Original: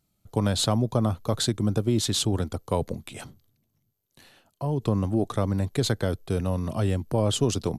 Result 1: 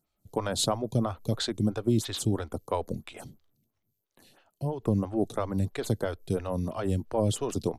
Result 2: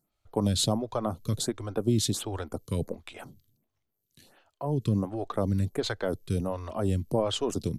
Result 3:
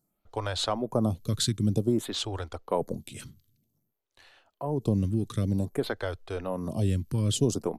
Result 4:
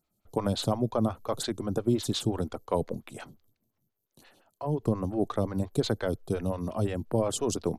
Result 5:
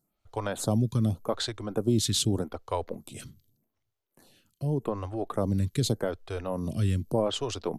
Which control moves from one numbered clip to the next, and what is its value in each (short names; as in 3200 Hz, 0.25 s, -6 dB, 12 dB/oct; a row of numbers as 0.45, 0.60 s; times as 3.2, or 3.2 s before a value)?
photocell phaser, rate: 3, 1.4, 0.53, 5.7, 0.84 Hz